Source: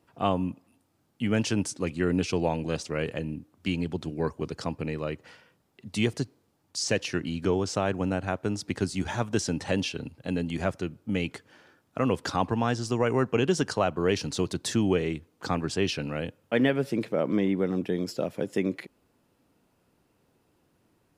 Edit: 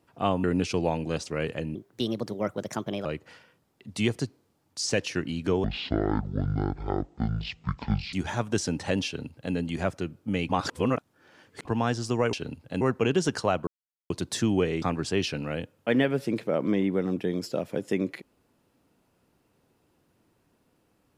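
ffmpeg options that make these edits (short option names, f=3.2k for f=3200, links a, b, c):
-filter_complex "[0:a]asplit=13[a][b][c][d][e][f][g][h][i][j][k][l][m];[a]atrim=end=0.442[n];[b]atrim=start=2.028:end=3.344[o];[c]atrim=start=3.34:end=5.03,asetpts=PTS-STARTPTS,asetrate=57330,aresample=44100[p];[d]atrim=start=5.026:end=7.624[q];[e]atrim=start=7.62:end=8.94,asetpts=PTS-STARTPTS,asetrate=23373,aresample=44100[r];[f]atrim=start=8.936:end=11.302[s];[g]atrim=start=11.298:end=12.462,asetpts=PTS-STARTPTS,areverse[t];[h]atrim=start=12.458:end=13.142[u];[i]atrim=start=9.868:end=10.352[v];[j]atrim=start=13.138:end=14,asetpts=PTS-STARTPTS,afade=t=out:st=0.858:d=0.004:c=hsin[w];[k]atrim=start=14:end=14.43,asetpts=PTS-STARTPTS,volume=0[x];[l]atrim=start=14.43:end=15.152,asetpts=PTS-STARTPTS,afade=t=in:d=0.004:c=hsin[y];[m]atrim=start=15.468[z];[n][o]acrossfade=d=0.004:c1=hsin:c2=hsin[aa];[aa][p]acrossfade=d=0.004:c1=hsin:c2=hsin[ab];[ab][q]acrossfade=d=0.004:c1=hsin:c2=hsin[ac];[ac][r]acrossfade=d=0.004:c1=hsin:c2=hsin[ad];[ad][s]acrossfade=d=0.004:c1=hsin:c2=hsin[ae];[ae][t]acrossfade=d=0.004:c1=hsin:c2=hsin[af];[af][u]acrossfade=d=0.004:c1=hsin:c2=hsin[ag];[ag][v]acrossfade=d=0.004:c1=hsin:c2=hsin[ah];[w][x][y]concat=n=3:v=0:a=1[ai];[ah][ai]acrossfade=d=0.004:c1=hsin:c2=hsin[aj];[aj][z]acrossfade=d=0.004:c1=hsin:c2=hsin"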